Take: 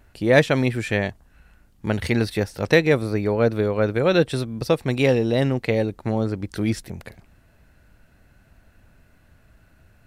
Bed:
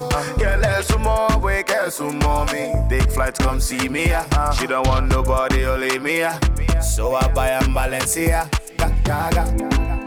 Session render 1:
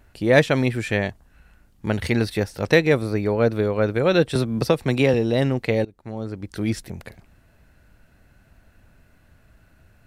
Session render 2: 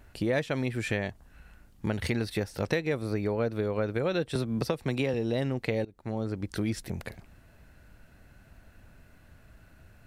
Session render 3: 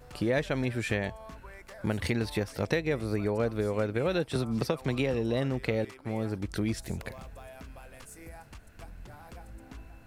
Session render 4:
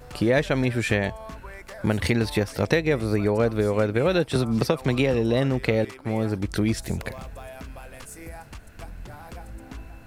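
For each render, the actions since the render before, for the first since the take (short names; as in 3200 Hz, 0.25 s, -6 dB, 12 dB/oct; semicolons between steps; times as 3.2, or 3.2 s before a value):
4.35–5.14 three-band squash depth 70%; 5.85–6.8 fade in, from -22 dB
compressor 4:1, threshold -27 dBFS, peak gain reduction 15 dB
add bed -29 dB
gain +7 dB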